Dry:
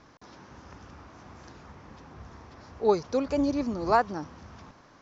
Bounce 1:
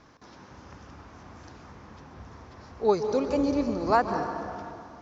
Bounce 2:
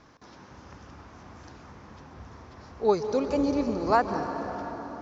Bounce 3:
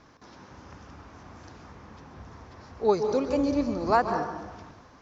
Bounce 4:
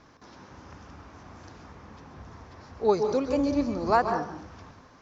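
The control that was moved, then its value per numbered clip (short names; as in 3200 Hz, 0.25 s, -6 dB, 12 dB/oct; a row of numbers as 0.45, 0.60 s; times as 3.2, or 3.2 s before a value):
plate-style reverb, RT60: 2.5, 5.3, 1.1, 0.52 s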